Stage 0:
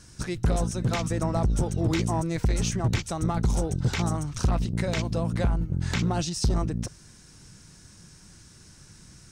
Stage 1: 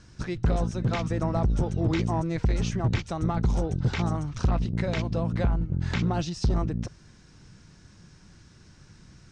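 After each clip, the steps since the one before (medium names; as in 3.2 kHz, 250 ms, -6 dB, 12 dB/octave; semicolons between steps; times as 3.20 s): distance through air 130 m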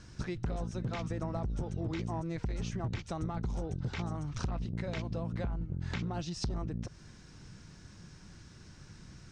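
compression 6:1, threshold -33 dBFS, peak gain reduction 13 dB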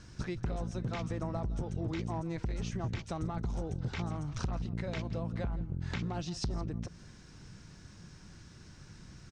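delay 168 ms -18.5 dB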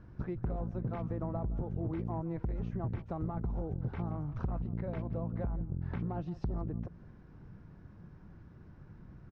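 low-pass 1.1 kHz 12 dB/octave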